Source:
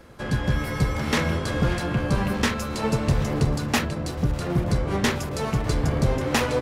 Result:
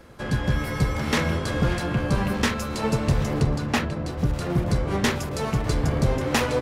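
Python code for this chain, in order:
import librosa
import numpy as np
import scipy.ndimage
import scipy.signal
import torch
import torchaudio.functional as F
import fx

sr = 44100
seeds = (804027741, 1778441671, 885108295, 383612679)

y = fx.high_shelf(x, sr, hz=fx.line((3.41, 6800.0), (4.18, 4500.0)), db=-9.5, at=(3.41, 4.18), fade=0.02)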